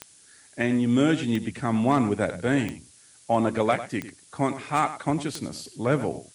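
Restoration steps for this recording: clip repair -10.5 dBFS; de-click; noise print and reduce 16 dB; inverse comb 0.101 s -13.5 dB

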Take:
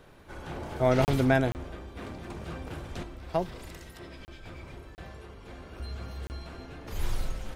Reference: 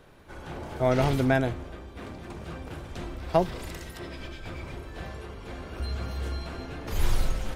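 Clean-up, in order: interpolate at 1.05/1.52/4.25/4.95/6.27, 29 ms; gain correction +6 dB, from 3.03

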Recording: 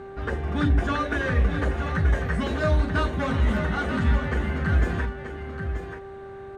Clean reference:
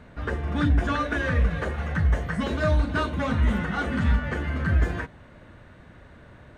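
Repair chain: de-hum 391.7 Hz, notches 4; inverse comb 0.932 s -8.5 dB

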